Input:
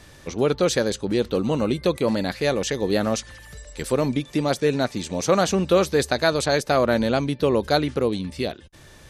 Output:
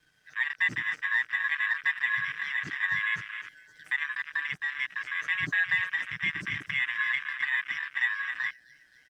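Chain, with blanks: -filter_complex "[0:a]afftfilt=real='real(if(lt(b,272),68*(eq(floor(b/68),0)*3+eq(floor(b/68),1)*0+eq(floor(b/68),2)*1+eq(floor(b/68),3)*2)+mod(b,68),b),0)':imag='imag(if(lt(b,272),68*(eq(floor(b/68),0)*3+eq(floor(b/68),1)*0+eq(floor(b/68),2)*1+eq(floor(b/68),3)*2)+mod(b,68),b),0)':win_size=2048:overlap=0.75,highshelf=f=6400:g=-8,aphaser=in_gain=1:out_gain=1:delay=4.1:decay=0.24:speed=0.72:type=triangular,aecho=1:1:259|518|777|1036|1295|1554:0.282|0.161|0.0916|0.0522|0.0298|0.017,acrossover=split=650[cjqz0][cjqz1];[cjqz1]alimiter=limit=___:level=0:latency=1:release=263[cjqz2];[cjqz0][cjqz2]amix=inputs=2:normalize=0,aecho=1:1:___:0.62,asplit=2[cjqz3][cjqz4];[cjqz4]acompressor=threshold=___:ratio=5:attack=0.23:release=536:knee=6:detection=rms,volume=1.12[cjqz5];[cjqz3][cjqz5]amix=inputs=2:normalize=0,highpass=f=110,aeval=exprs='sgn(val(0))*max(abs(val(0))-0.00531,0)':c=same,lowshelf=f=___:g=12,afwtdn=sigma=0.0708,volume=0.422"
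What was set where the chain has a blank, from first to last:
0.237, 6.6, 0.0224, 210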